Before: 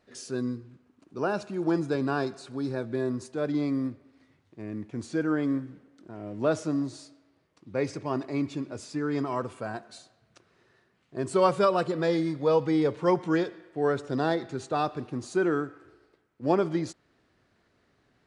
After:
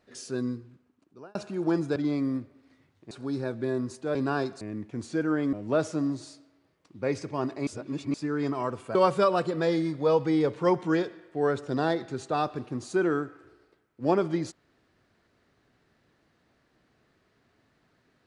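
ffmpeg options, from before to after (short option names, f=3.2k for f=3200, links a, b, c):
-filter_complex "[0:a]asplit=10[a][b][c][d][e][f][g][h][i][j];[a]atrim=end=1.35,asetpts=PTS-STARTPTS,afade=t=out:st=0.53:d=0.82[k];[b]atrim=start=1.35:end=1.962,asetpts=PTS-STARTPTS,afade=t=in:d=0.004:c=hsin[l];[c]atrim=start=3.458:end=4.612[m];[d]atrim=start=2.418:end=3.462[n];[e]atrim=start=1.958:end=2.422[o];[f]atrim=start=4.608:end=5.532[p];[g]atrim=start=6.248:end=8.392[q];[h]atrim=start=8.388:end=8.862,asetpts=PTS-STARTPTS,areverse[r];[i]atrim=start=8.858:end=9.672[s];[j]atrim=start=11.358[t];[k][l]concat=n=2:v=0:a=1[u];[u][m]acrossfade=d=0.004:c1=hsin:c2=hsin[v];[v][n]acrossfade=d=0.004:c1=hsin:c2=hsin[w];[w][o]acrossfade=d=0.004:c1=hsin:c2=hsin[x];[x][p]acrossfade=d=0.004:c1=hsin:c2=hsin[y];[y][q]acrossfade=d=0.004:c1=hsin:c2=hsin[z];[z][r]acrossfade=d=0.004:c1=hsin:c2=hsin[aa];[aa][s]acrossfade=d=0.004:c1=hsin:c2=hsin[ab];[ab][t]acrossfade=d=0.004:c1=hsin:c2=hsin"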